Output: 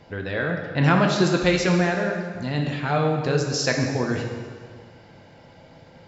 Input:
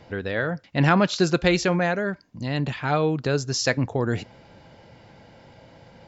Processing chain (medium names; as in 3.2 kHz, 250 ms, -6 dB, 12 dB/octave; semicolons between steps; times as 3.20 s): plate-style reverb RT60 1.8 s, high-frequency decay 0.85×, DRR 1.5 dB; trim -1.5 dB